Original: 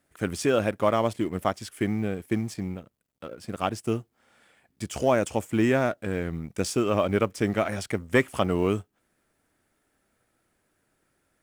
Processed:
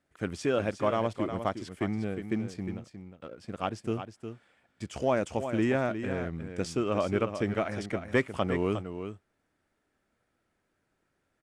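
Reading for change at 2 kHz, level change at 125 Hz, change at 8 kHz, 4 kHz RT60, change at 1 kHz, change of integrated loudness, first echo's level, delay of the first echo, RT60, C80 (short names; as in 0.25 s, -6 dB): -4.5 dB, -4.0 dB, -10.0 dB, none, -4.5 dB, -4.5 dB, -9.0 dB, 0.359 s, none, none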